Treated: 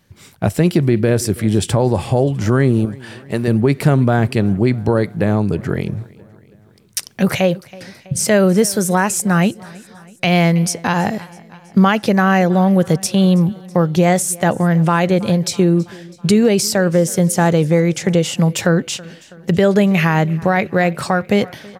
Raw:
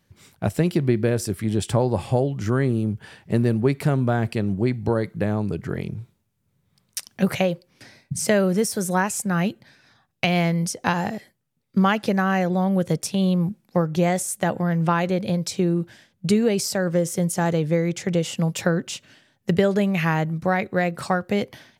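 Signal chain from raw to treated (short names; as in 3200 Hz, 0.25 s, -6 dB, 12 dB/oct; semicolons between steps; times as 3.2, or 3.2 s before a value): 2.85–3.48 low shelf 370 Hz -11.5 dB; feedback echo 0.326 s, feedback 59%, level -23.5 dB; maximiser +11 dB; gain -3 dB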